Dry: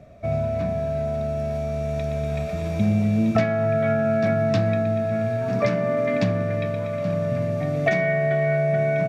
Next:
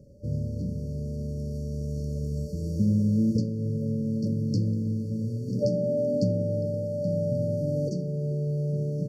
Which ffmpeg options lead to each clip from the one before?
-af "afftfilt=real='re*(1-between(b*sr/4096,600,4300))':imag='im*(1-between(b*sr/4096,600,4300))':win_size=4096:overlap=0.75,volume=0.75"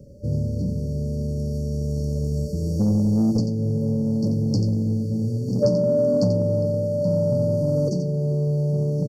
-filter_complex "[0:a]acrossover=split=490|1800[s0][s1][s2];[s0]asoftclip=type=tanh:threshold=0.0794[s3];[s2]aecho=1:1:88:0.376[s4];[s3][s1][s4]amix=inputs=3:normalize=0,volume=2.24"

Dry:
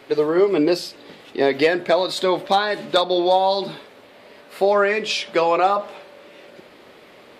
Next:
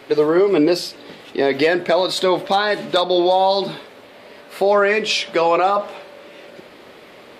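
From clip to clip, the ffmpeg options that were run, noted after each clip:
-af "alimiter=limit=0.282:level=0:latency=1:release=40,volume=1.58"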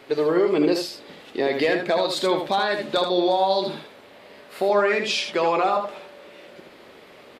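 -af "aecho=1:1:78:0.501,volume=0.531"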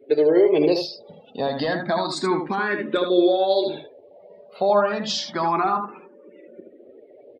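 -filter_complex "[0:a]lowshelf=f=410:g=4.5,afftdn=nr=31:nf=-40,asplit=2[s0][s1];[s1]afreqshift=0.29[s2];[s0][s2]amix=inputs=2:normalize=1,volume=1.33"

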